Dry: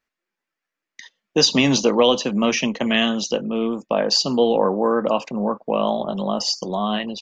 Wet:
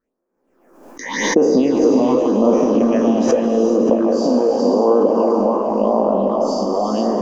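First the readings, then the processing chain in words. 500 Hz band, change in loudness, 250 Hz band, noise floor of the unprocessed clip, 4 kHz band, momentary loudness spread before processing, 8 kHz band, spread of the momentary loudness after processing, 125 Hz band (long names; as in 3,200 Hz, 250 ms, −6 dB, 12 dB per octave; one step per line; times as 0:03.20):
+6.0 dB, +4.0 dB, +6.0 dB, below −85 dBFS, −11.5 dB, 8 LU, can't be measured, 5 LU, −0.5 dB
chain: peak hold with a decay on every bin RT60 1.25 s
high-shelf EQ 2,400 Hz −10 dB
harmonic and percussive parts rebalanced percussive +6 dB
octave-band graphic EQ 125/250/500/1,000/2,000/4,000 Hz −11/+10/+9/+4/−8/−11 dB
downward compressor 3 to 1, threshold −13 dBFS, peak gain reduction 11 dB
all-pass phaser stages 6, 0.87 Hz, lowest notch 110–3,800 Hz
echo with a time of its own for lows and highs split 440 Hz, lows 357 ms, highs 575 ms, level −12.5 dB
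reverb whose tail is shaped and stops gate 490 ms rising, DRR 2 dB
background raised ahead of every attack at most 61 dB per second
level −1 dB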